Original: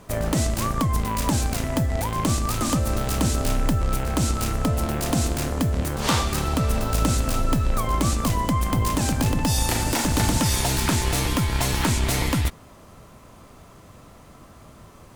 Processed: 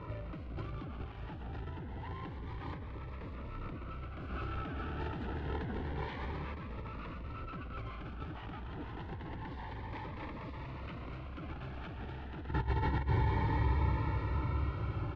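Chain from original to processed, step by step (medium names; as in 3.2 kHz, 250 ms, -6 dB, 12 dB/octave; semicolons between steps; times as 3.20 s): median filter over 15 samples; high-pass 65 Hz 12 dB/octave; peaking EQ 490 Hz -9.5 dB 0.45 oct; comb 2.2 ms, depth 86%; echo that smears into a reverb 622 ms, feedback 67%, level -12 dB; reverberation RT60 0.55 s, pre-delay 112 ms, DRR 10.5 dB; wavefolder -21 dBFS; 4.30–6.55 s: bass shelf 170 Hz -4 dB; compressor with a negative ratio -33 dBFS, ratio -0.5; low-pass 3.3 kHz 24 dB/octave; Shepard-style phaser rising 0.28 Hz; trim -2.5 dB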